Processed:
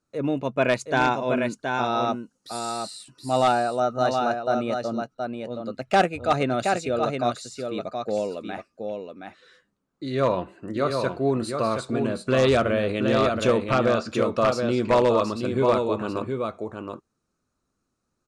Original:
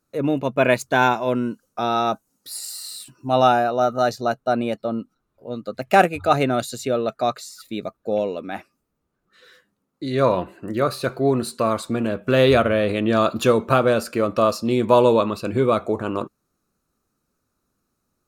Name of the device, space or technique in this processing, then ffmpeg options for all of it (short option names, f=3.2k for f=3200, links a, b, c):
synthesiser wavefolder: -filter_complex "[0:a]asettb=1/sr,asplit=3[a][b][c];[a]atrim=end=13.584[d];[b]atrim=start=13.58:end=14.18,asetpts=PTS-STARTPTS,afade=t=in:d=0.004:c=qsin,afade=t=out:st=0.596:d=0.004:c=qsin,lowpass=f=6.3k:w=0.5412,lowpass=f=6.3k:w=1.3066[e];[c]atrim=start=14.176[f];[d][e]acrossfade=d=0.004:c1=hsin:c2=qsin[g];[g][f]acrossfade=d=0.004:c1=qsin:c2=hsin,aecho=1:1:722:0.531,aeval=exprs='0.447*(abs(mod(val(0)/0.447+3,4)-2)-1)':c=same,lowpass=f=8.9k:w=0.5412,lowpass=f=8.9k:w=1.3066,volume=-4dB"